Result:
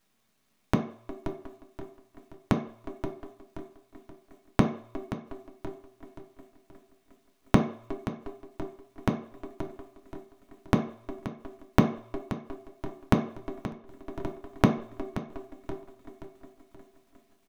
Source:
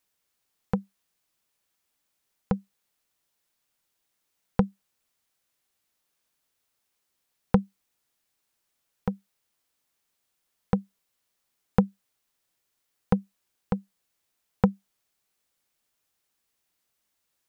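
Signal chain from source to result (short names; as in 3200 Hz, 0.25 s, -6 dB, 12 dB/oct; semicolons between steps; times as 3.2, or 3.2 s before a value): median filter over 9 samples; high shelf 2600 Hz +12 dB; in parallel at -2 dB: limiter -15.5 dBFS, peak gain reduction 11.5 dB; on the sum: tape echo 0.359 s, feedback 75%, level -18 dB, low-pass 2900 Hz; full-wave rectifier; feedback echo 0.527 s, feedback 39%, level -13.5 dB; flipped gate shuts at -19 dBFS, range -32 dB; on a send at -2 dB: reverb RT60 0.55 s, pre-delay 3 ms; on the sum: gain +2 dB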